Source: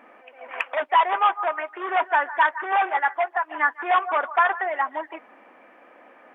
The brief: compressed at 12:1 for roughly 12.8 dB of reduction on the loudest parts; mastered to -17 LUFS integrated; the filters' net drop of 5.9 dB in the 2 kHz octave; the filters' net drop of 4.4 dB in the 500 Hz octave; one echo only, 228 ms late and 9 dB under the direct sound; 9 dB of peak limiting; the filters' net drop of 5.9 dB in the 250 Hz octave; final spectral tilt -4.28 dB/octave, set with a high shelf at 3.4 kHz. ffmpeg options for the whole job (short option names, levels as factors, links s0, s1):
-af "equalizer=f=250:t=o:g=-6,equalizer=f=500:t=o:g=-5,equalizer=f=2000:t=o:g=-5.5,highshelf=f=3400:g=-6.5,acompressor=threshold=0.0316:ratio=12,alimiter=level_in=1.5:limit=0.0631:level=0:latency=1,volume=0.668,aecho=1:1:228:0.355,volume=10"